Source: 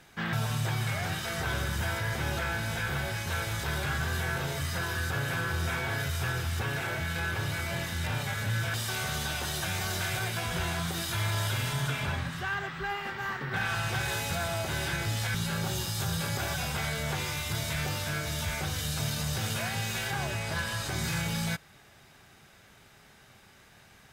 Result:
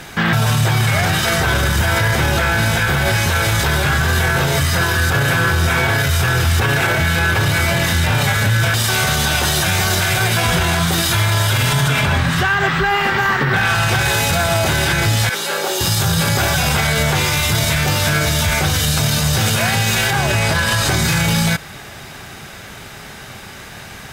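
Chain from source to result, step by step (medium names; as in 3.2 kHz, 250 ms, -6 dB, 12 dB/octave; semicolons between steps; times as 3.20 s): 15.29–15.81 s: ladder high-pass 340 Hz, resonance 40%; loudness maximiser +28.5 dB; trim -6.5 dB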